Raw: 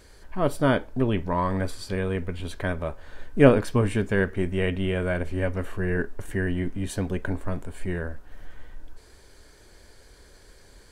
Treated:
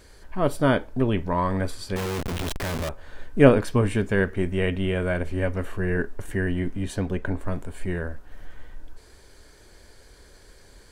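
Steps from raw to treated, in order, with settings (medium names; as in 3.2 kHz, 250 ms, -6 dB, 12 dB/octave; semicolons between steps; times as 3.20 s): 1.96–2.89 s: Schmitt trigger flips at -45.5 dBFS; 6.83–7.39 s: treble shelf 9.3 kHz -> 5.2 kHz -8 dB; trim +1 dB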